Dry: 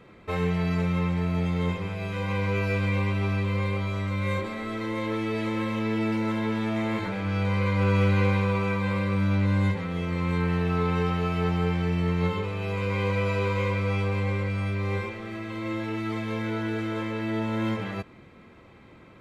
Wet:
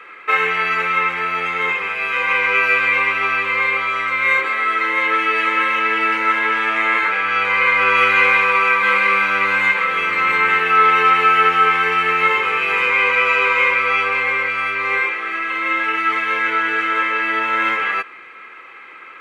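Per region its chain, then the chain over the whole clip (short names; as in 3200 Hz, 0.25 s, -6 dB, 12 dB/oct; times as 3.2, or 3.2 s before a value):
7.97–12.9 high shelf 6500 Hz +5 dB + echo 0.86 s -6.5 dB
whole clip: HPF 490 Hz 12 dB/oct; band shelf 1800 Hz +14 dB; comb 2.4 ms, depth 37%; gain +5.5 dB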